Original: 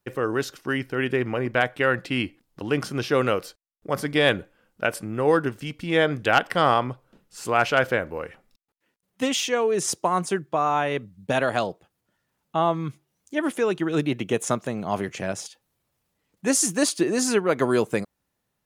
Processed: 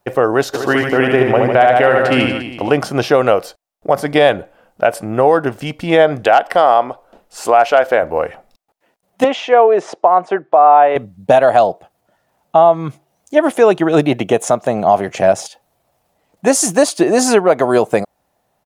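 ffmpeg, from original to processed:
-filter_complex "[0:a]asplit=3[s0][s1][s2];[s0]afade=t=out:st=0.53:d=0.02[s3];[s1]aecho=1:1:70|150.5|243.1|349.5|472:0.631|0.398|0.251|0.158|0.1,afade=t=in:st=0.53:d=0.02,afade=t=out:st=2.69:d=0.02[s4];[s2]afade=t=in:st=2.69:d=0.02[s5];[s3][s4][s5]amix=inputs=3:normalize=0,asettb=1/sr,asplit=3[s6][s7][s8];[s6]atrim=end=6.244[s9];[s7]atrim=start=6.24:end=8.03,asetpts=PTS-STARTPTS,afade=t=in:d=0.004:c=qsin,afade=t=out:st=1.786:d=0.004:c=qsin,equalizer=f=130:w=1.5:g=-14.5[s10];[s8]atrim=start=8.026[s11];[s9][s10]acrossfade=d=0.004:c1=hsin:c2=qsin[s12];[s12][s11]acrossfade=d=0.004:c1=qsin:c2=hsin,asettb=1/sr,asplit=3[s13][s14][s15];[s13]atrim=end=9.244[s16];[s14]atrim=start=9.24:end=10.96,asetpts=PTS-STARTPTS,afade=t=in:d=0.004:c=qsin,afade=t=out:st=1.716:d=0.004:c=qsin,highpass=340,lowpass=2200[s17];[s15]atrim=start=10.956[s18];[s16][s17]acrossfade=d=0.004:c1=hsin:c2=qsin[s19];[s19][s18]acrossfade=d=0.004:c1=qsin:c2=hsin,equalizer=f=700:w=1.6:g=15,alimiter=limit=0.355:level=0:latency=1:release=248,volume=2.51"

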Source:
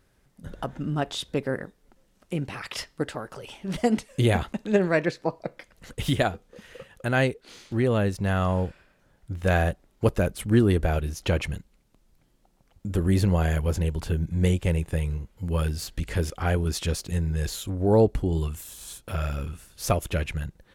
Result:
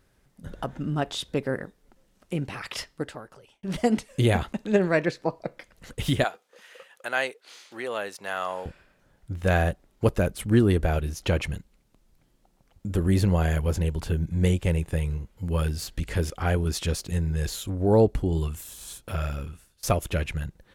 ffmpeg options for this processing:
-filter_complex "[0:a]asettb=1/sr,asplit=3[s0][s1][s2];[s0]atrim=end=6.244[s3];[s1]atrim=start=6.24:end=8.66,asetpts=PTS-STARTPTS,afade=t=in:d=0.004:c=qsin,afade=t=out:st=2.416:d=0.004:c=qsin,highpass=670[s4];[s2]atrim=start=8.656[s5];[s3][s4]acrossfade=d=0.004:c1=hsin:c2=qsin[s6];[s6][s5]acrossfade=d=0.004:c1=qsin:c2=hsin,asplit=3[s7][s8][s9];[s7]atrim=end=3.63,asetpts=PTS-STARTPTS,afade=t=out:st=2.75:d=0.88[s10];[s8]atrim=start=3.63:end=19.83,asetpts=PTS-STARTPTS,afade=t=in:d=0.004:c=hsin,afade=t=out:st=15.4:d=0.8:c=qsin:silence=0.0630957[s11];[s9]atrim=start=19.83,asetpts=PTS-STARTPTS,afade=t=in:d=0.004:c=hsin:silence=0.0630957[s12];[s10][s11][s12]concat=n=3:v=0:a=1"

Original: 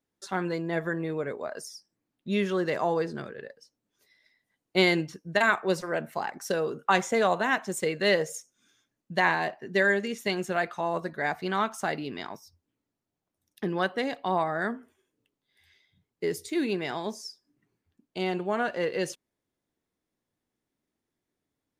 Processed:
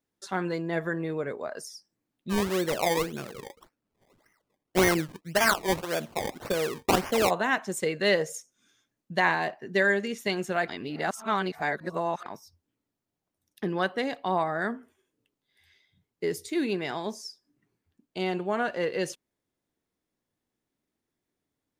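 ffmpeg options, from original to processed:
-filter_complex "[0:a]asplit=3[s0][s1][s2];[s0]afade=t=out:st=2.29:d=0.02[s3];[s1]acrusher=samples=22:mix=1:aa=0.000001:lfo=1:lforange=22:lforate=1.8,afade=t=in:st=2.29:d=0.02,afade=t=out:st=7.29:d=0.02[s4];[s2]afade=t=in:st=7.29:d=0.02[s5];[s3][s4][s5]amix=inputs=3:normalize=0,asplit=3[s6][s7][s8];[s6]atrim=end=10.682[s9];[s7]atrim=start=10.678:end=12.262,asetpts=PTS-STARTPTS,areverse[s10];[s8]atrim=start=12.258[s11];[s9][s10]acrossfade=d=0.004:c1=hsin:c2=hsin[s12];[s12][s11]acrossfade=d=0.004:c1=hsin:c2=hsin"

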